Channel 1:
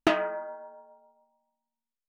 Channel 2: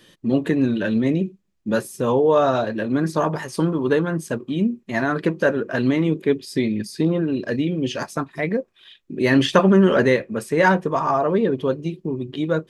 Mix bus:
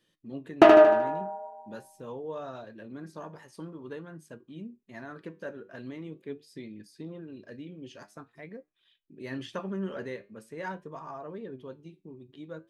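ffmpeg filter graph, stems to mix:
ffmpeg -i stem1.wav -i stem2.wav -filter_complex "[0:a]equalizer=frequency=600:width_type=o:width=2.6:gain=12,adelay=550,volume=2.5dB,asplit=2[link_01][link_02];[link_02]volume=-4dB[link_03];[1:a]volume=-16.5dB[link_04];[link_03]aecho=0:1:76|152|228|304|380|456|532:1|0.5|0.25|0.125|0.0625|0.0312|0.0156[link_05];[link_01][link_04][link_05]amix=inputs=3:normalize=0,flanger=delay=6.2:depth=4.3:regen=81:speed=0.45:shape=sinusoidal" out.wav

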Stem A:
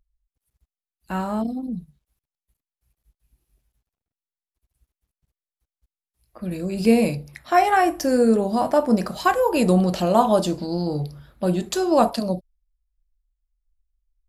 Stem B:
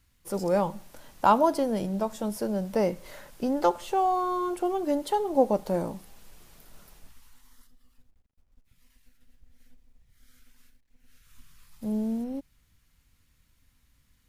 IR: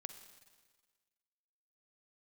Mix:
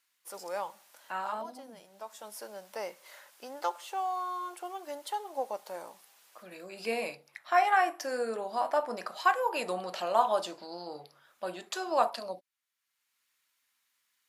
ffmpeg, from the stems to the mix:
-filter_complex "[0:a]highshelf=frequency=4300:gain=-11.5,volume=-2.5dB,asplit=2[link_01][link_02];[1:a]volume=-3.5dB[link_03];[link_02]apad=whole_len=629797[link_04];[link_03][link_04]sidechaincompress=threshold=-38dB:ratio=5:attack=16:release=722[link_05];[link_01][link_05]amix=inputs=2:normalize=0,highpass=880"

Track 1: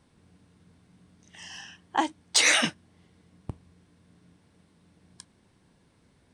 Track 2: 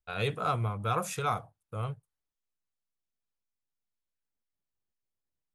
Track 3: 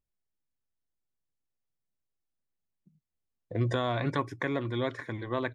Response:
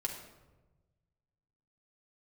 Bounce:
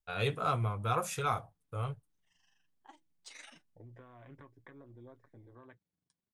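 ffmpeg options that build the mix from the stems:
-filter_complex "[0:a]flanger=delay=0.6:depth=6.3:regen=62:speed=0.68:shape=triangular,tremolo=f=24:d=0.71,adelay=900,volume=-20dB[link_01];[1:a]asubboost=boost=5.5:cutoff=68,volume=2.5dB[link_02];[2:a]afwtdn=0.0158,acompressor=threshold=-32dB:ratio=6,adelay=250,volume=-14.5dB[link_03];[link_01][link_02][link_03]amix=inputs=3:normalize=0,flanger=delay=6.9:depth=1.1:regen=-51:speed=0.53:shape=triangular"

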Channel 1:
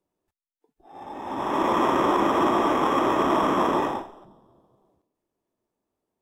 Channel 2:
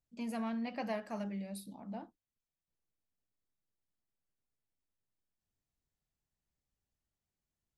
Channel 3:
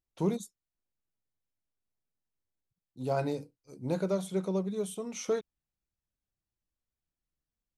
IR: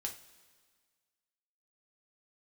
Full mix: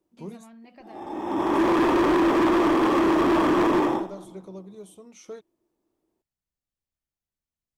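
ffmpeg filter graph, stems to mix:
-filter_complex "[0:a]equalizer=frequency=330:width_type=o:width=0.38:gain=12.5,volume=0.5dB[link_01];[1:a]acompressor=threshold=-43dB:ratio=3,volume=-4.5dB[link_02];[2:a]volume=-9.5dB[link_03];[link_01][link_02][link_03]amix=inputs=3:normalize=0,asoftclip=type=hard:threshold=-17.5dB"

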